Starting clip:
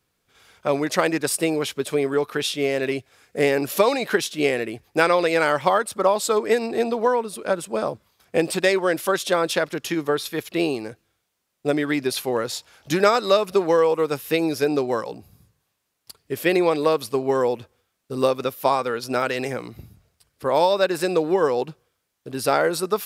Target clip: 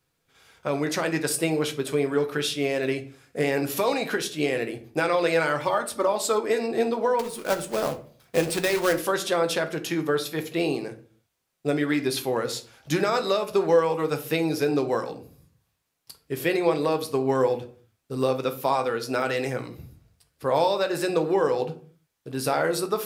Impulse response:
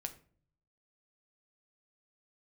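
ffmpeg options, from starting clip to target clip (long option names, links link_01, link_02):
-filter_complex "[0:a]asettb=1/sr,asplit=3[link_01][link_02][link_03];[link_01]atrim=end=5.604[link_04];[link_02]atrim=start=5.6:end=6.12,asetpts=PTS-STARTPTS,afade=type=in:duration=0.004:curve=qsin,afade=type=out:start_time=0.516:duration=0.004:curve=qsin,aecho=1:1:3.4:0.65,atrim=end_sample=22932[link_05];[link_03]atrim=start=6.116[link_06];[link_04][link_05]acrossfade=duration=0.004:curve1=hsin:curve2=qsin[link_07];[link_07][link_06]acrossfade=duration=0.004:curve1=qsin:curve2=hsin,alimiter=limit=-9.5dB:level=0:latency=1:release=126,asettb=1/sr,asplit=3[link_08][link_09][link_10];[link_08]atrim=end=7.194[link_11];[link_09]atrim=start=7.19:end=8.93,asetpts=PTS-STARTPTS,afade=type=in:duration=0.004:curve=qsin,afade=type=out:start_time=1.736:duration=0.004:curve=qsin,acrusher=bits=2:mode=log:mix=0:aa=0.000001[link_12];[link_10]atrim=start=8.926[link_13];[link_11][link_12]acrossfade=duration=0.004:curve1=hsin:curve2=qsin[link_14];[link_14][link_13]acrossfade=duration=0.004:curve1=qsin:curve2=hsin[link_15];[1:a]atrim=start_sample=2205,afade=type=out:start_time=0.39:duration=0.01,atrim=end_sample=17640[link_16];[link_15][link_16]afir=irnorm=-1:irlink=0"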